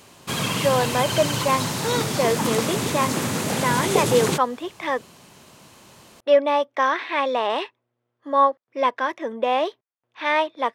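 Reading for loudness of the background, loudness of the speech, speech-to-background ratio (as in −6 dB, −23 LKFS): −24.0 LKFS, −23.5 LKFS, 0.5 dB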